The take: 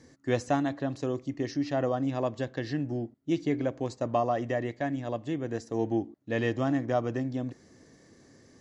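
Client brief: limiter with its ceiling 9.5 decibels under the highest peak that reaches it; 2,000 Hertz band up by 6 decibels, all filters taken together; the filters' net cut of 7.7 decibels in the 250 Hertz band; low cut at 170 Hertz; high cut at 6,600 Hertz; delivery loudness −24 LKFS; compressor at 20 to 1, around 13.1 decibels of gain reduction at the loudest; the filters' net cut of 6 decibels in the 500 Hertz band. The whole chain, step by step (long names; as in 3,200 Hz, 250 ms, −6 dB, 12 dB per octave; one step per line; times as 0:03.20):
high-pass filter 170 Hz
low-pass filter 6,600 Hz
parametric band 250 Hz −6.5 dB
parametric band 500 Hz −6.5 dB
parametric band 2,000 Hz +7.5 dB
downward compressor 20 to 1, threshold −38 dBFS
level +21.5 dB
brickwall limiter −11.5 dBFS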